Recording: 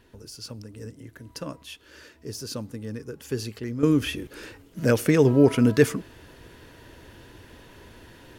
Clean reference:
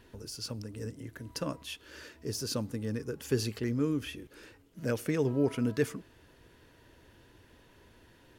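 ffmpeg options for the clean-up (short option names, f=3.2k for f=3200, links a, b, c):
-af "asetnsamples=n=441:p=0,asendcmd='3.83 volume volume -11dB',volume=0dB"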